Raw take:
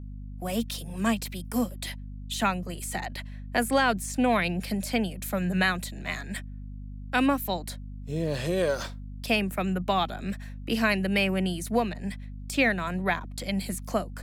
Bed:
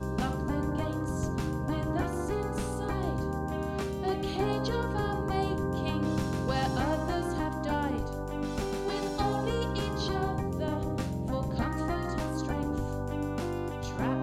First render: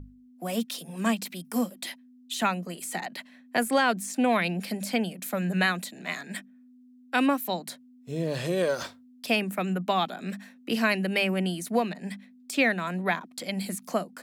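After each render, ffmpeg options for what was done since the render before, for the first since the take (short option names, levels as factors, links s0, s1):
-af "bandreject=f=50:t=h:w=6,bandreject=f=100:t=h:w=6,bandreject=f=150:t=h:w=6,bandreject=f=200:t=h:w=6"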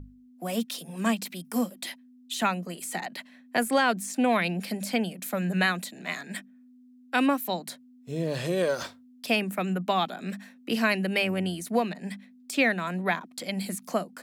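-filter_complex "[0:a]asettb=1/sr,asplit=3[s0][s1][s2];[s0]atrim=end=11.224[s3];[s1]atrim=start=11.22:end=11.7,asetpts=PTS-STARTPTS,afade=t=in:d=0.004:c=qsin,afade=t=out:st=0.476:d=0.004:c=qsin,tremolo=f=86:d=0.261[s4];[s2]atrim=start=11.696[s5];[s3][s4]acrossfade=d=0.004:c1=hsin:c2=qsin[s6];[s6][s5]acrossfade=d=0.004:c1=qsin:c2=hsin"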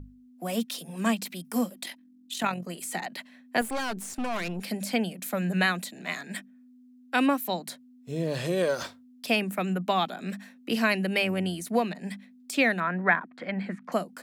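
-filter_complex "[0:a]asettb=1/sr,asplit=3[s0][s1][s2];[s0]atrim=end=1.834[s3];[s1]atrim=start=1.83:end=2.67,asetpts=PTS-STARTPTS,afade=t=in:d=0.004:c=qsin,afade=t=out:st=0.836:d=0.004:c=qsin,tremolo=f=44:d=0.519[s4];[s2]atrim=start=2.666[s5];[s3][s4]acrossfade=d=0.004:c1=hsin:c2=qsin[s6];[s6][s5]acrossfade=d=0.004:c1=qsin:c2=hsin,asettb=1/sr,asplit=3[s7][s8][s9];[s7]atrim=end=3.614[s10];[s8]atrim=start=3.61:end=4.63,asetpts=PTS-STARTPTS,afade=t=in:d=0.004:c=qsin,afade=t=out:st=1.016:d=0.004:c=qsin,aeval=exprs='(tanh(25.1*val(0)+0.6)-tanh(0.6))/25.1':c=same[s11];[s9]atrim=start=4.626[s12];[s10][s11]acrossfade=d=0.004:c1=hsin:c2=qsin[s13];[s13][s12]acrossfade=d=0.004:c1=qsin:c2=hsin,asettb=1/sr,asplit=3[s14][s15][s16];[s14]atrim=end=12.804[s17];[s15]atrim=start=12.8:end=13.92,asetpts=PTS-STARTPTS,afade=t=in:d=0.004:c=qsin,afade=t=out:st=1.116:d=0.004:c=qsin,lowpass=f=1700:t=q:w=2.5[s18];[s16]atrim=start=13.916[s19];[s17][s18]acrossfade=d=0.004:c1=hsin:c2=qsin[s20];[s20][s19]acrossfade=d=0.004:c1=qsin:c2=hsin"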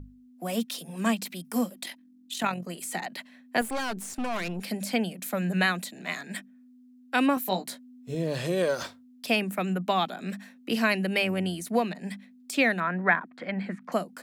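-filter_complex "[0:a]asettb=1/sr,asplit=3[s0][s1][s2];[s0]atrim=end=7.354[s3];[s1]atrim=start=7.35:end=8.15,asetpts=PTS-STARTPTS,afade=t=in:d=0.004:c=qsin,afade=t=out:st=0.796:d=0.004:c=qsin,asplit=2[s4][s5];[s5]adelay=16,volume=0.631[s6];[s4][s6]amix=inputs=2:normalize=0,atrim=end_sample=35280[s7];[s2]atrim=start=8.146[s8];[s3][s7]acrossfade=d=0.004:c1=hsin:c2=qsin[s9];[s9][s8]acrossfade=d=0.004:c1=qsin:c2=hsin"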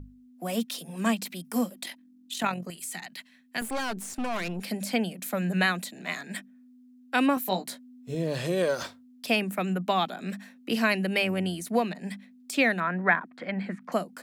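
-filter_complex "[0:a]asettb=1/sr,asplit=3[s0][s1][s2];[s0]atrim=end=2.704[s3];[s1]atrim=start=2.7:end=3.62,asetpts=PTS-STARTPTS,afade=t=in:d=0.004:c=qsin,afade=t=out:st=0.916:d=0.004:c=qsin,equalizer=f=520:t=o:w=2.4:g=-14[s4];[s2]atrim=start=3.616[s5];[s3][s4]acrossfade=d=0.004:c1=hsin:c2=qsin[s6];[s6][s5]acrossfade=d=0.004:c1=qsin:c2=hsin"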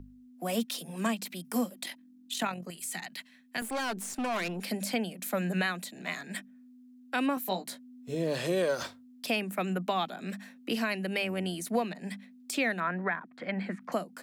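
-filter_complex "[0:a]acrossover=split=170[s0][s1];[s0]acompressor=threshold=0.00355:ratio=6[s2];[s1]alimiter=limit=0.106:level=0:latency=1:release=466[s3];[s2][s3]amix=inputs=2:normalize=0"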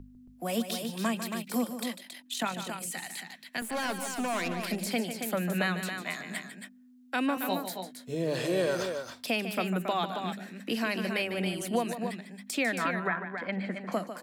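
-af "aecho=1:1:148.7|274.1:0.316|0.447"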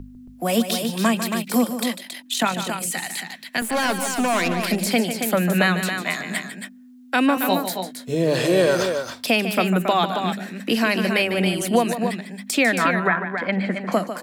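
-af "volume=3.35"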